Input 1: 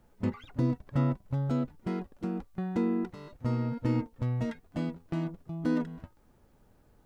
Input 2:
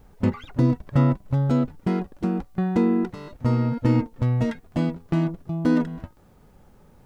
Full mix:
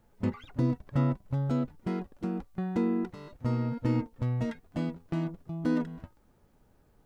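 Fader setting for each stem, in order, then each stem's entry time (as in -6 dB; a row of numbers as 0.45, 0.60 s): -2.0, -19.5 dB; 0.00, 0.00 s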